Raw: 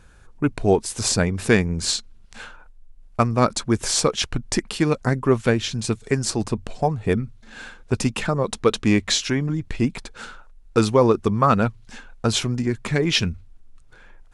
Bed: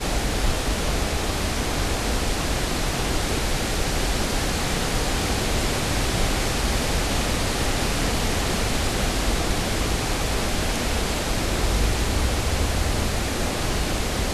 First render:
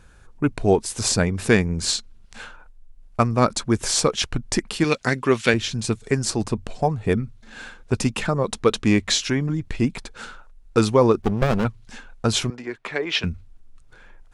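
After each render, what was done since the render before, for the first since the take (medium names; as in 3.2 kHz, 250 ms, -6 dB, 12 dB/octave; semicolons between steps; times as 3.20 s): 4.84–5.54 s: frequency weighting D; 11.22–11.65 s: sliding maximum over 33 samples; 12.50–13.24 s: three-band isolator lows -22 dB, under 370 Hz, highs -15 dB, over 4.1 kHz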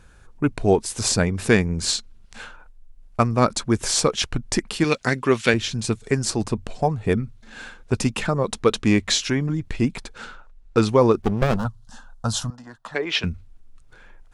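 10.18–10.89 s: distance through air 53 m; 11.56–12.95 s: static phaser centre 940 Hz, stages 4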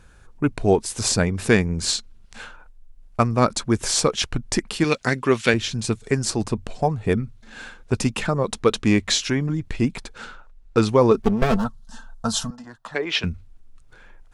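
11.11–12.65 s: comb 4.5 ms, depth 64%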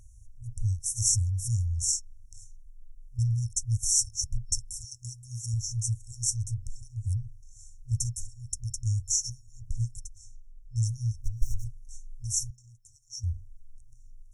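FFT band-reject 120–5400 Hz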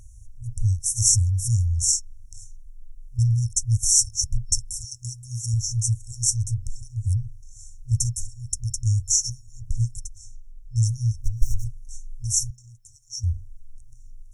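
trim +6.5 dB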